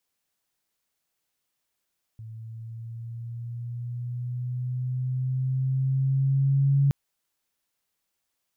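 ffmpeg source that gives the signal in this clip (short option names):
-f lavfi -i "aevalsrc='pow(10,(-17+20.5*(t/4.72-1))/20)*sin(2*PI*111*4.72/(4*log(2)/12)*(exp(4*log(2)/12*t/4.72)-1))':d=4.72:s=44100"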